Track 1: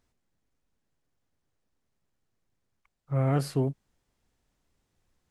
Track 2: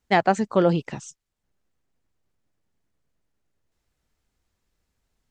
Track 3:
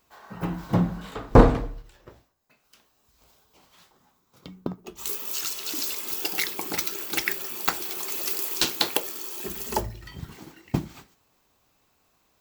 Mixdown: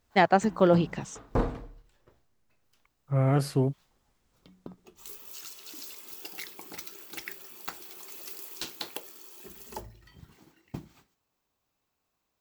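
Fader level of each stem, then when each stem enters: +1.5, -2.0, -13.5 dB; 0.00, 0.05, 0.00 s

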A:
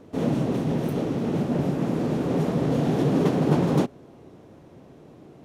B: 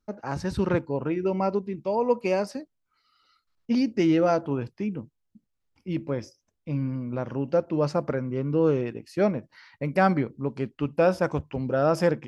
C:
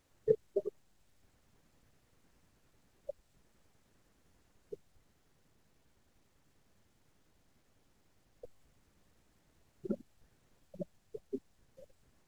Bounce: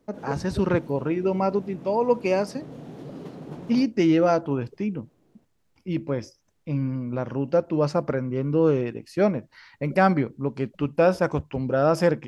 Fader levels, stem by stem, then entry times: -17.5, +2.0, -4.5 dB; 0.00, 0.00, 0.00 s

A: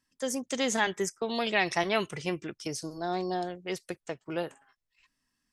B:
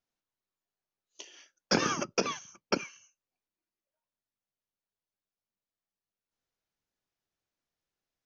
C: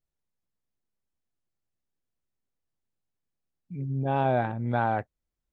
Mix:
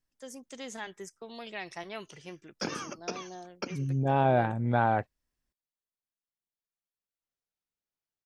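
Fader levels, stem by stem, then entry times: -13.0, -8.0, +0.5 dB; 0.00, 0.90, 0.00 s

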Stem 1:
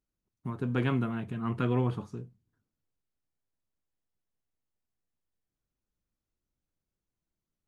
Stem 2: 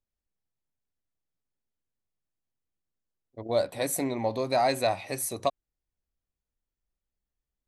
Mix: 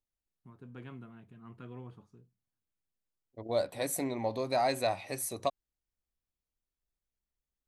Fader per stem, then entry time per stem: -18.5, -4.5 dB; 0.00, 0.00 s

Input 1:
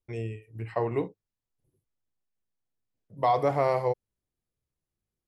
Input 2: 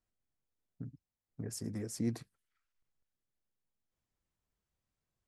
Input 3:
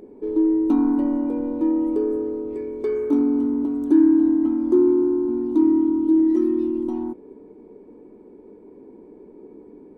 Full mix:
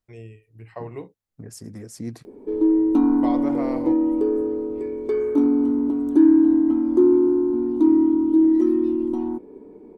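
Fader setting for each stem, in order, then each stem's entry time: -6.5, +2.0, +1.0 dB; 0.00, 0.00, 2.25 s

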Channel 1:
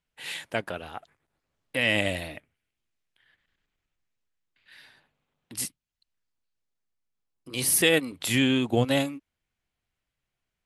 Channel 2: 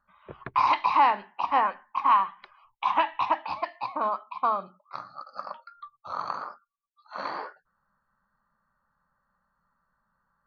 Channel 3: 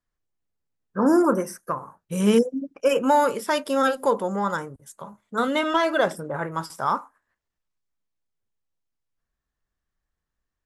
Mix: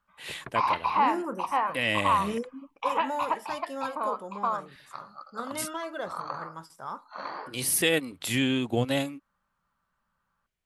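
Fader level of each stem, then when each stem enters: -3.0, -3.5, -14.0 dB; 0.00, 0.00, 0.00 s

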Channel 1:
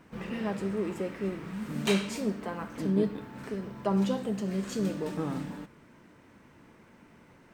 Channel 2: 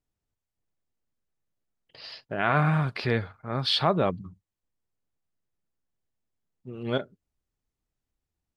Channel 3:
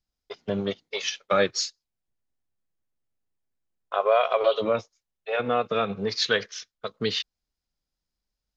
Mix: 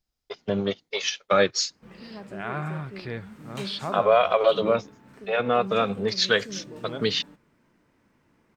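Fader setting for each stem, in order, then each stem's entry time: -9.0, -8.5, +2.0 dB; 1.70, 0.00, 0.00 s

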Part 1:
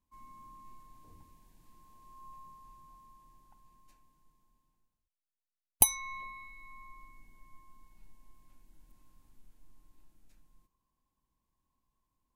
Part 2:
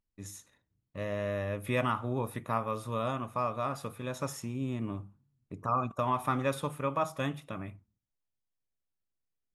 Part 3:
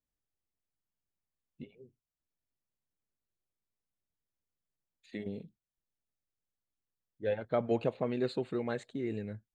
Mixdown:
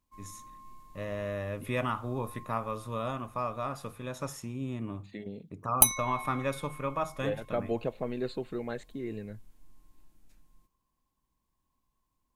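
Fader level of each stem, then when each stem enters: +2.5, -1.5, -1.5 dB; 0.00, 0.00, 0.00 s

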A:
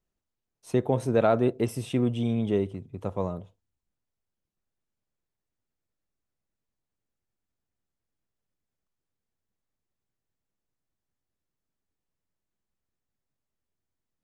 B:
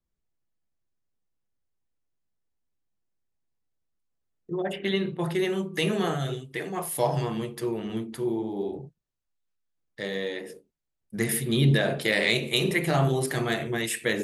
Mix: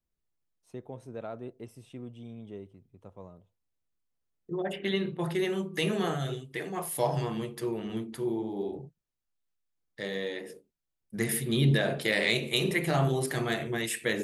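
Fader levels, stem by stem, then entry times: -17.5, -3.0 dB; 0.00, 0.00 s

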